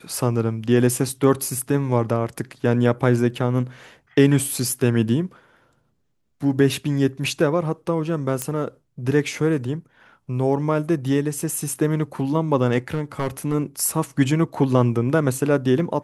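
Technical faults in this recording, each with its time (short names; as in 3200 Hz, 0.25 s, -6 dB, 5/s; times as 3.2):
8.42 pop -8 dBFS
12.94–13.55 clipped -16.5 dBFS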